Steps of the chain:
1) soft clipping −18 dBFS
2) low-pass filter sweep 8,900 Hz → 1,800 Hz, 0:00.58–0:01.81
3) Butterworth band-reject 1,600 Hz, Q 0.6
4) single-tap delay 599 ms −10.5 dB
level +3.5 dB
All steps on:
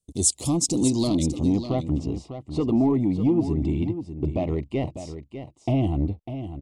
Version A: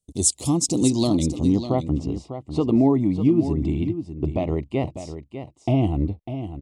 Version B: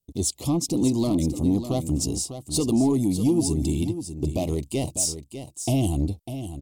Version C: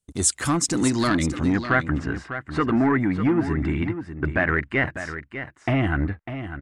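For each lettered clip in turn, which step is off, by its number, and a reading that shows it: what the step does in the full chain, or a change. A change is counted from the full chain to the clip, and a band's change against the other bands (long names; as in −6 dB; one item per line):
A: 1, distortion level −14 dB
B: 2, change in crest factor −3.5 dB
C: 3, 1 kHz band +8.5 dB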